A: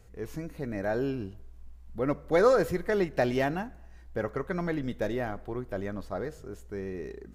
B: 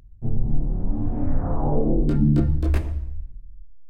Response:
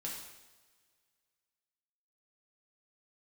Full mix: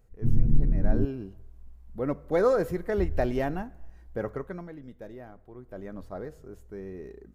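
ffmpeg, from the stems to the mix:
-filter_complex "[0:a]bandreject=f=50:t=h:w=6,bandreject=f=100:t=h:w=6,dynaudnorm=f=730:g=3:m=8.5dB,volume=1.5dB,afade=t=out:st=4.29:d=0.39:silence=0.237137,afade=t=in:st=5.53:d=0.45:silence=0.354813[a];[1:a]afwtdn=0.0708,volume=0.5dB,asplit=3[b][c][d];[b]atrim=end=1.05,asetpts=PTS-STARTPTS,afade=t=out:st=1.046:d=0.004:c=hsin[e];[c]atrim=start=1.05:end=2.98,asetpts=PTS-STARTPTS,volume=0[f];[d]atrim=start=2.98,asetpts=PTS-STARTPTS,afade=t=in:d=0.004:c=hsin[g];[e][f][g]concat=n=3:v=0:a=1[h];[a][h]amix=inputs=2:normalize=0,equalizer=f=4.2k:w=0.33:g=-7"

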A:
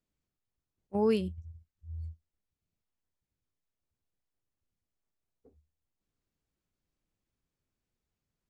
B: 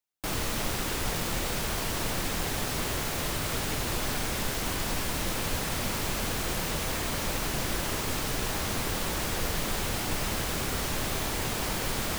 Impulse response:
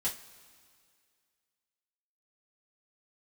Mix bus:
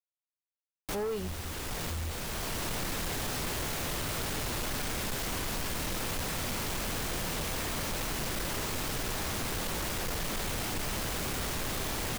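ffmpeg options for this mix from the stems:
-filter_complex "[0:a]aecho=1:1:2.1:0.65,acrossover=split=180[a][b];[b]acompressor=threshold=-29dB:ratio=6[c];[a][c]amix=inputs=2:normalize=0,volume=2.5dB,asplit=2[d][e];[1:a]adelay=650,volume=1dB[f];[e]apad=whole_len=566241[g];[f][g]sidechaincompress=threshold=-39dB:ratio=5:attack=16:release=935[h];[d][h]amix=inputs=2:normalize=0,asoftclip=type=tanh:threshold=-30dB,acrusher=bits=7:mix=0:aa=0.000001"

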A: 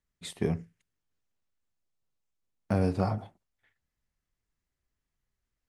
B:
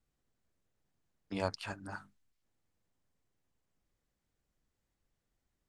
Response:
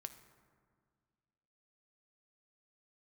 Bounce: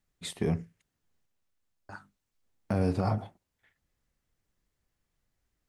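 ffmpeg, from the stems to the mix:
-filter_complex "[0:a]volume=2.5dB[a];[1:a]volume=-1dB,asplit=3[b][c][d];[b]atrim=end=1.26,asetpts=PTS-STARTPTS,afade=t=out:st=1.256:d=0.004:c=hsin[e];[c]atrim=start=1.26:end=1.89,asetpts=PTS-STARTPTS,volume=0[f];[d]atrim=start=1.89,asetpts=PTS-STARTPTS,afade=t=in:d=0.004:c=hsin[g];[e][f][g]concat=n=3:v=0:a=1[h];[a][h]amix=inputs=2:normalize=0,alimiter=limit=-17dB:level=0:latency=1:release=34"

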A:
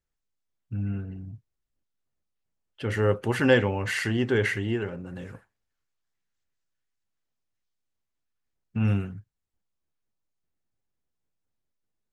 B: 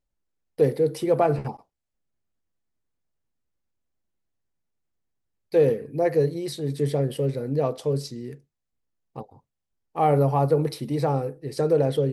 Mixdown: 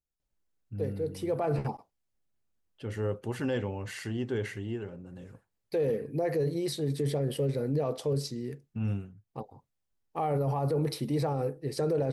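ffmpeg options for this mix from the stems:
-filter_complex "[0:a]equalizer=f=1.8k:w=0.79:g=-7.5,volume=-7dB,afade=t=out:st=8.91:d=0.25:silence=0.446684,asplit=2[a][b];[1:a]adelay=200,volume=-1dB[c];[b]apad=whole_len=543747[d];[c][d]sidechaincompress=threshold=-51dB:ratio=3:attack=16:release=314[e];[a][e]amix=inputs=2:normalize=0,alimiter=limit=-21.5dB:level=0:latency=1:release=22"

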